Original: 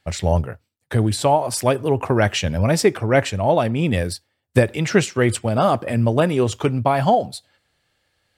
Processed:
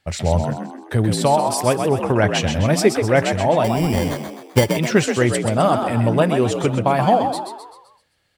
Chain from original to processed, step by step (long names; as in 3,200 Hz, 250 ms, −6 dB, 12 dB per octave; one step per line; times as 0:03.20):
0:01.80–0:02.35: high-shelf EQ 7,300 Hz −11.5 dB
0:03.64–0:04.75: sample-rate reduction 2,600 Hz, jitter 0%
echo with shifted repeats 129 ms, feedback 47%, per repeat +60 Hz, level −6.5 dB